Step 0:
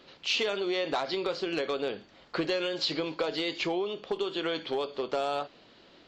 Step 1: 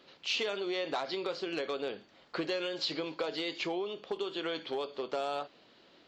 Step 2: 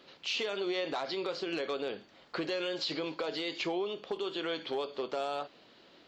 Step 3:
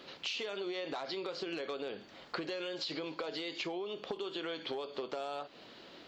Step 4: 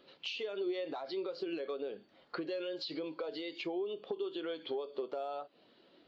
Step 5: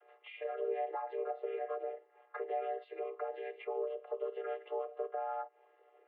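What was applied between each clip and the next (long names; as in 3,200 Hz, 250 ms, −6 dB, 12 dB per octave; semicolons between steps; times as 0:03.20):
low-shelf EQ 84 Hz −11 dB; level −4 dB
brickwall limiter −27 dBFS, peak gain reduction 5 dB; level +2 dB
downward compressor 12 to 1, threshold −41 dBFS, peak gain reduction 11.5 dB; level +5.5 dB
every bin expanded away from the loudest bin 1.5 to 1; level −3.5 dB
channel vocoder with a chord as carrier major triad, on C4; single-sideband voice off tune +69 Hz 470–2,400 Hz; level +7.5 dB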